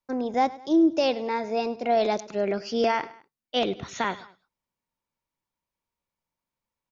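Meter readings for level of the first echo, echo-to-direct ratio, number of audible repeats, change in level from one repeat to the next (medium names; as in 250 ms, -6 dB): -18.5 dB, -17.5 dB, 2, -7.0 dB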